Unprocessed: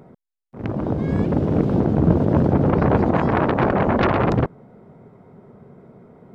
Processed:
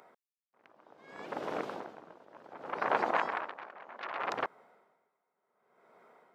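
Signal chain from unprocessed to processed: HPF 1000 Hz 12 dB/oct; dB-linear tremolo 0.66 Hz, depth 23 dB

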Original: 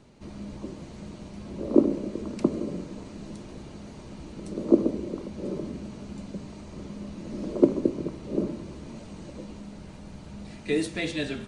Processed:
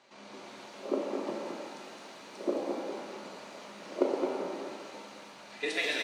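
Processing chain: tempo 1.9×; BPF 730–5500 Hz; on a send: echo 0.215 s -5 dB; on the sum: shimmer reverb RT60 1.3 s, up +7 st, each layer -8 dB, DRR 0.5 dB; gain +2 dB

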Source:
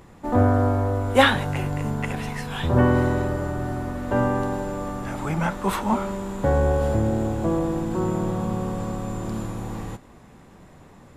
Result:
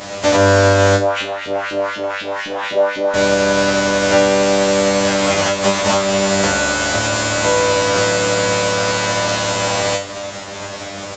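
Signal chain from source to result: spectral contrast lowered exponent 0.33; HPF 52 Hz; bell 610 Hz +13.5 dB 0.26 oct; compressor 6:1, threshold -32 dBFS, peak gain reduction 21 dB; 0.96–3.14 LFO band-pass saw up 4 Hz 270–3500 Hz; resonator 99 Hz, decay 0.35 s, harmonics all, mix 100%; downsampling 16000 Hz; maximiser +30 dB; gain -1 dB

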